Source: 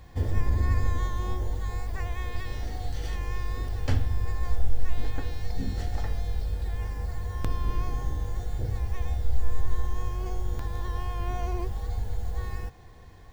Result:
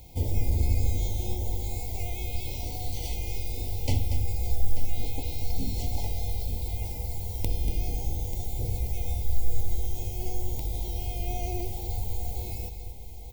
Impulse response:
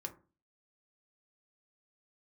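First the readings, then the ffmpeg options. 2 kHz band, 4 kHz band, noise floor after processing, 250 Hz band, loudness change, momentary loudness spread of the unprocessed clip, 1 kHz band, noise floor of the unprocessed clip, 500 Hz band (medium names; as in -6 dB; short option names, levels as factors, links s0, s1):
-5.5 dB, +4.5 dB, -37 dBFS, 0.0 dB, +0.5 dB, 7 LU, -4.0 dB, -47 dBFS, 0.0 dB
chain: -filter_complex "[0:a]aemphasis=mode=production:type=50fm,afftfilt=real='re*(1-between(b*sr/4096,990,2000))':imag='im*(1-between(b*sr/4096,990,2000))':win_size=4096:overlap=0.75,asplit=2[s0][s1];[s1]aecho=0:1:236|888:0.316|0.224[s2];[s0][s2]amix=inputs=2:normalize=0"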